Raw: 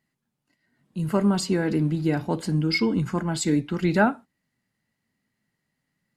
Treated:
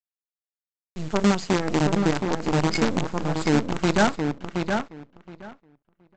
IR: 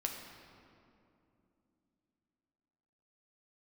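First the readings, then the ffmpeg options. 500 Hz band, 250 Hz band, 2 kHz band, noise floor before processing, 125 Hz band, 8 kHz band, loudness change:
+2.5 dB, 0.0 dB, +2.0 dB, -80 dBFS, -0.5 dB, 0.0 dB, 0.0 dB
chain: -filter_complex "[0:a]aresample=16000,acrusher=bits=4:dc=4:mix=0:aa=0.000001,aresample=44100,asplit=2[s0][s1];[s1]adelay=721,lowpass=f=2700:p=1,volume=0.562,asplit=2[s2][s3];[s3]adelay=721,lowpass=f=2700:p=1,volume=0.16,asplit=2[s4][s5];[s5]adelay=721,lowpass=f=2700:p=1,volume=0.16[s6];[s0][s2][s4][s6]amix=inputs=4:normalize=0,adynamicequalizer=threshold=0.0178:dfrequency=1700:dqfactor=0.7:tfrequency=1700:tqfactor=0.7:attack=5:release=100:ratio=0.375:range=2:mode=cutabove:tftype=highshelf"

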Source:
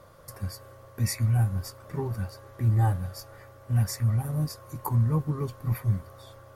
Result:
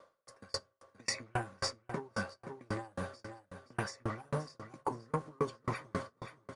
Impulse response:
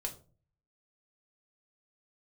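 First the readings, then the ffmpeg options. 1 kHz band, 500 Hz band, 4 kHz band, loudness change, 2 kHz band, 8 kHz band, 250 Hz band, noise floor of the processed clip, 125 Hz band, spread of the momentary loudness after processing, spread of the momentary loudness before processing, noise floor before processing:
-1.5 dB, -0.5 dB, +0.5 dB, -11.5 dB, +3.0 dB, -6.0 dB, -9.0 dB, -76 dBFS, -19.5 dB, 12 LU, 14 LU, -51 dBFS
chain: -filter_complex "[0:a]asoftclip=type=tanh:threshold=0.0944,aresample=22050,aresample=44100,agate=range=0.0708:threshold=0.0112:ratio=16:detection=peak,acrossover=split=680|6600[s0][s1][s2];[s0]acompressor=threshold=0.0178:ratio=4[s3];[s1]acompressor=threshold=0.00447:ratio=4[s4];[s2]acompressor=threshold=0.00112:ratio=4[s5];[s3][s4][s5]amix=inputs=3:normalize=0,acrossover=split=230 7800:gain=0.1 1 0.251[s6][s7][s8];[s6][s7][s8]amix=inputs=3:normalize=0,aecho=1:1:524|1048|1572:0.2|0.0658|0.0217,acompressor=threshold=0.00562:ratio=6,asplit=2[s9][s10];[s10]equalizer=f=1400:w=1.5:g=4.5[s11];[1:a]atrim=start_sample=2205[s12];[s11][s12]afir=irnorm=-1:irlink=0,volume=0.282[s13];[s9][s13]amix=inputs=2:normalize=0,aeval=exprs='val(0)*pow(10,-38*if(lt(mod(3.7*n/s,1),2*abs(3.7)/1000),1-mod(3.7*n/s,1)/(2*abs(3.7)/1000),(mod(3.7*n/s,1)-2*abs(3.7)/1000)/(1-2*abs(3.7)/1000))/20)':c=same,volume=7.94"

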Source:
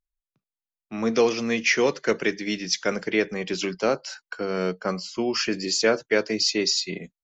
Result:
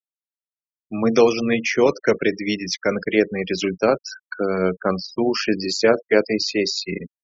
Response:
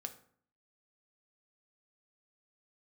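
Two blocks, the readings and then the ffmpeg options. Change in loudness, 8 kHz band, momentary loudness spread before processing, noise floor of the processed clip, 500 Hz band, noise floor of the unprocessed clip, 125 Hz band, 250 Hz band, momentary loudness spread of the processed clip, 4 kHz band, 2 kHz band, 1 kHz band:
+3.5 dB, no reading, 8 LU, under -85 dBFS, +5.5 dB, under -85 dBFS, +6.0 dB, +5.5 dB, 8 LU, -0.5 dB, +1.5 dB, +4.5 dB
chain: -filter_complex "[0:a]afftfilt=real='re*gte(hypot(re,im),0.0316)':imag='im*gte(hypot(re,im),0.0316)':win_size=1024:overlap=0.75,acrossover=split=1200|4300[s0][s1][s2];[s1]acompressor=threshold=0.0282:ratio=4[s3];[s2]acompressor=threshold=0.0112:ratio=4[s4];[s0][s3][s4]amix=inputs=3:normalize=0,tremolo=f=100:d=0.462,volume=2.37"

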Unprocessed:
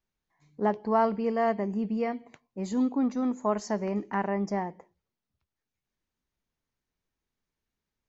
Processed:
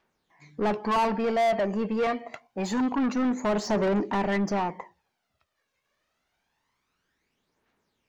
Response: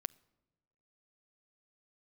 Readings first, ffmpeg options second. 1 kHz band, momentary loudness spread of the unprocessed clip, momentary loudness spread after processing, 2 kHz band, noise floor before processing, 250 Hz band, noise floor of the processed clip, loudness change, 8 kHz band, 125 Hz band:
+3.0 dB, 8 LU, 9 LU, +6.0 dB, under -85 dBFS, +1.5 dB, -79 dBFS, +2.5 dB, no reading, +3.0 dB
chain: -filter_complex "[0:a]aphaser=in_gain=1:out_gain=1:delay=1.9:decay=0.55:speed=0.26:type=triangular,asplit=2[s0][s1];[s1]highpass=f=720:p=1,volume=25.1,asoftclip=type=tanh:threshold=0.251[s2];[s0][s2]amix=inputs=2:normalize=0,lowpass=f=2100:p=1,volume=0.501,volume=0.562"

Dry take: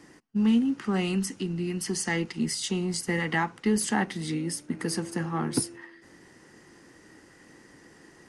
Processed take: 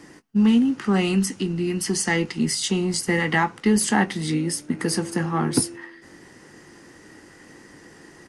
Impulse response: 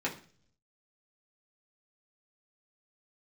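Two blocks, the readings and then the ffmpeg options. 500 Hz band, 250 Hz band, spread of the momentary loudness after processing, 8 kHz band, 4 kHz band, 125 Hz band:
+6.0 dB, +6.0 dB, 6 LU, +6.0 dB, +6.0 dB, +6.0 dB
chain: -filter_complex "[0:a]asplit=2[s0][s1];[s1]adelay=20,volume=0.224[s2];[s0][s2]amix=inputs=2:normalize=0,volume=2"

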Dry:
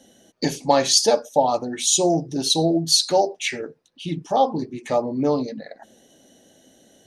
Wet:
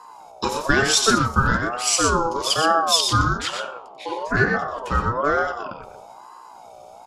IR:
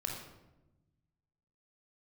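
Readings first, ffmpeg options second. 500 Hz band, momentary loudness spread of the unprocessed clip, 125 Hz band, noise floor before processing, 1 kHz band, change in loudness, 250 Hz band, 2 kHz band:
-4.0 dB, 15 LU, +5.0 dB, -58 dBFS, +2.5 dB, +0.5 dB, -2.5 dB, +13.0 dB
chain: -filter_complex "[0:a]aecho=1:1:90.38|122.4:0.355|0.447,aeval=exprs='val(0)+0.00562*(sin(2*PI*60*n/s)+sin(2*PI*2*60*n/s)/2+sin(2*PI*3*60*n/s)/3+sin(2*PI*4*60*n/s)/4+sin(2*PI*5*60*n/s)/5)':c=same,asplit=2[s0][s1];[1:a]atrim=start_sample=2205,lowshelf=f=380:g=11.5[s2];[s1][s2]afir=irnorm=-1:irlink=0,volume=0.188[s3];[s0][s3]amix=inputs=2:normalize=0,aeval=exprs='val(0)*sin(2*PI*830*n/s+830*0.2/1.1*sin(2*PI*1.1*n/s))':c=same"

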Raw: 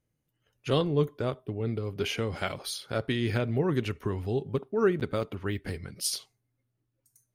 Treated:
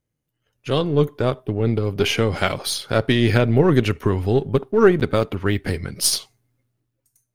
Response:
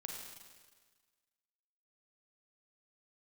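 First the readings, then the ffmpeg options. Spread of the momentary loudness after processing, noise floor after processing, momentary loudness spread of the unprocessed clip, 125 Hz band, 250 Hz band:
8 LU, -78 dBFS, 8 LU, +10.5 dB, +10.5 dB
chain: -af "aeval=exprs='if(lt(val(0),0),0.708*val(0),val(0))':c=same,dynaudnorm=f=160:g=11:m=3.98,volume=1.19"

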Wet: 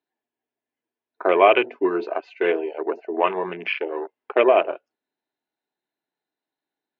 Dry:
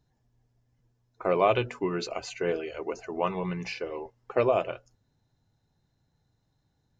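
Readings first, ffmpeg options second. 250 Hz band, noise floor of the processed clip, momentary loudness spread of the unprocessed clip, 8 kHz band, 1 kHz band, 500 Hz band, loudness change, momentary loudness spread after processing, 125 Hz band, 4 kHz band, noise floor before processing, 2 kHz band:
+6.5 dB, under -85 dBFS, 12 LU, no reading, +8.5 dB, +7.5 dB, +8.0 dB, 13 LU, under -10 dB, +6.5 dB, -74 dBFS, +10.5 dB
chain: -af "apsyclip=4.47,afwtdn=0.0631,highpass=f=330:w=0.5412,highpass=f=330:w=1.3066,equalizer=f=510:t=q:w=4:g=-8,equalizer=f=820:t=q:w=4:g=-3,equalizer=f=1200:t=q:w=4:g=-5,equalizer=f=2500:t=q:w=4:g=3,lowpass=f=3500:w=0.5412,lowpass=f=3500:w=1.3066,volume=0.891"

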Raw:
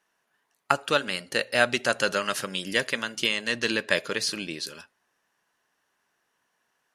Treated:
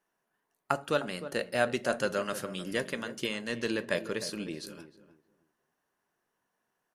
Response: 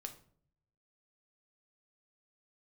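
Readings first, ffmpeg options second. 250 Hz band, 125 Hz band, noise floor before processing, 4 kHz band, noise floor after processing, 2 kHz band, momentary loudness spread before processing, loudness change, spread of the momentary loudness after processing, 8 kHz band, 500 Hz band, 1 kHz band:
-1.5 dB, -1.5 dB, -76 dBFS, -11.0 dB, -82 dBFS, -9.0 dB, 7 LU, -6.5 dB, 8 LU, -8.5 dB, -3.0 dB, -6.0 dB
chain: -filter_complex "[0:a]equalizer=f=3600:w=0.31:g=-10,asplit=2[s0][s1];[s1]adelay=307,lowpass=f=1100:p=1,volume=0.266,asplit=2[s2][s3];[s3]adelay=307,lowpass=f=1100:p=1,volume=0.24,asplit=2[s4][s5];[s5]adelay=307,lowpass=f=1100:p=1,volume=0.24[s6];[s0][s2][s4][s6]amix=inputs=4:normalize=0,asplit=2[s7][s8];[1:a]atrim=start_sample=2205,asetrate=74970,aresample=44100[s9];[s8][s9]afir=irnorm=-1:irlink=0,volume=1.33[s10];[s7][s10]amix=inputs=2:normalize=0,volume=0.596"

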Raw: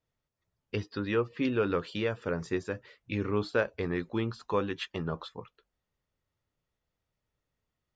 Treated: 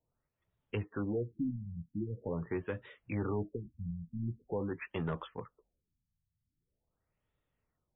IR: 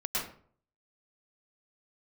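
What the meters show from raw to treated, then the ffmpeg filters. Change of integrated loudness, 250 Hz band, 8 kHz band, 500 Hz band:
-6.5 dB, -4.5 dB, no reading, -8.5 dB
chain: -filter_complex "[0:a]acrossover=split=210[s0][s1];[s1]alimiter=level_in=1.06:limit=0.0631:level=0:latency=1:release=157,volume=0.944[s2];[s0][s2]amix=inputs=2:normalize=0,asoftclip=type=tanh:threshold=0.0376,afftfilt=real='re*lt(b*sr/1024,210*pow(3900/210,0.5+0.5*sin(2*PI*0.44*pts/sr)))':imag='im*lt(b*sr/1024,210*pow(3900/210,0.5+0.5*sin(2*PI*0.44*pts/sr)))':win_size=1024:overlap=0.75,volume=1.12"

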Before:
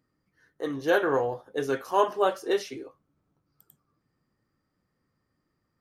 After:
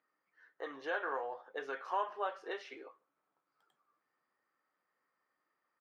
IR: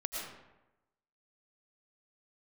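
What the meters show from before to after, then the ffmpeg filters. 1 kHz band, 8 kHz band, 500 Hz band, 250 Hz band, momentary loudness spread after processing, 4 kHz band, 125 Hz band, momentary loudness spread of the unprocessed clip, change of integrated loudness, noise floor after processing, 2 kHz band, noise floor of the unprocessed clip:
-9.5 dB, under -20 dB, -15.5 dB, -20.0 dB, 13 LU, -13.5 dB, under -30 dB, 12 LU, -12.5 dB, under -85 dBFS, -8.5 dB, -78 dBFS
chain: -filter_complex "[0:a]acompressor=threshold=0.0251:ratio=3,highpass=780,lowpass=2400,asplit=2[s0][s1];[s1]adelay=150,highpass=300,lowpass=3400,asoftclip=type=hard:threshold=0.0178,volume=0.0316[s2];[s0][s2]amix=inputs=2:normalize=0,volume=1.19"

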